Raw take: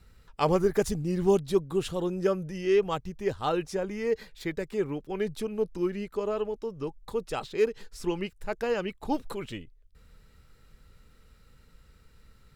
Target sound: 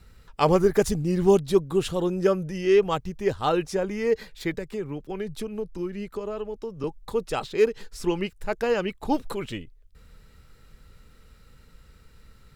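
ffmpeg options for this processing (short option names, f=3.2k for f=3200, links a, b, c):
-filter_complex "[0:a]asettb=1/sr,asplit=3[a][b][c];[a]atrim=end=4.544[d];[b]atrim=start=4.54:end=6.84,asetpts=PTS-STARTPTS,afade=t=in:d=0.004:c=qsin,afade=t=out:st=2.296:d=0.004:c=qsin,acrossover=split=150[e][f];[f]acompressor=threshold=-36dB:ratio=3[g];[e][g]amix=inputs=2:normalize=0[h];[c]atrim=start=6.836[i];[d][h]acrossfade=d=0.004:c1=hsin:c2=qsin[j];[j][i]acrossfade=d=0.004:c1=qsin:c2=hsin,volume=4.5dB"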